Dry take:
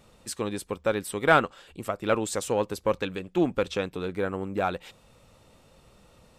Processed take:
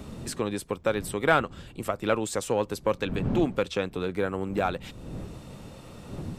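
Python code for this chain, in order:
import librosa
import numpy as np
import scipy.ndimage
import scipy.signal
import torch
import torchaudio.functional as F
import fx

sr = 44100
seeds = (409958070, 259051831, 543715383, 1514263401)

y = fx.dmg_wind(x, sr, seeds[0], corner_hz=180.0, level_db=-39.0)
y = fx.band_squash(y, sr, depth_pct=40)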